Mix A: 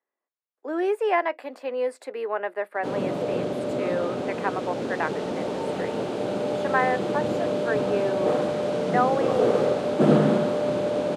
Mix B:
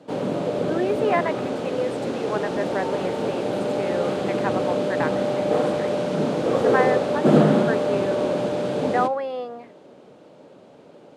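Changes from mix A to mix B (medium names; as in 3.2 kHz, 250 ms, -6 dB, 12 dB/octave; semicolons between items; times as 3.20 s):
background: entry -2.75 s; reverb: on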